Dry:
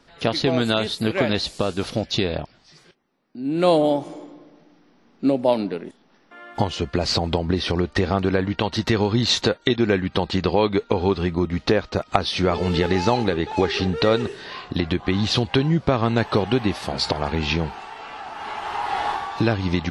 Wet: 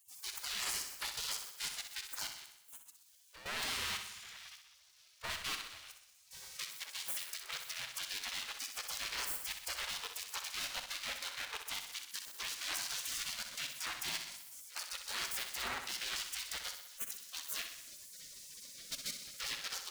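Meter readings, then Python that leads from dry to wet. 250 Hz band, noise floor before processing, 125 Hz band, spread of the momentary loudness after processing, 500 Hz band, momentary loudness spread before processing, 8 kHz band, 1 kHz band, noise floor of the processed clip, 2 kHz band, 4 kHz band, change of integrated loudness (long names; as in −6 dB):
−40.0 dB, −57 dBFS, −39.0 dB, 12 LU, −36.0 dB, 10 LU, −1.0 dB, −22.5 dB, −65 dBFS, −12.5 dB, −12.5 dB, −17.5 dB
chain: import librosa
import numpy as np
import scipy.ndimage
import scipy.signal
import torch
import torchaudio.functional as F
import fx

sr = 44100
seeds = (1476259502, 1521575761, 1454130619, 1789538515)

p1 = fx.power_curve(x, sr, exponent=0.5)
p2 = fx.level_steps(p1, sr, step_db=14)
p3 = fx.spec_gate(p2, sr, threshold_db=-30, keep='weak')
p4 = np.clip(10.0 ** (24.5 / 20.0) * p3, -1.0, 1.0) / 10.0 ** (24.5 / 20.0)
p5 = p4 + fx.echo_feedback(p4, sr, ms=63, feedback_pct=59, wet_db=-8.0, dry=0)
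y = F.gain(torch.from_numpy(p5), -5.0).numpy()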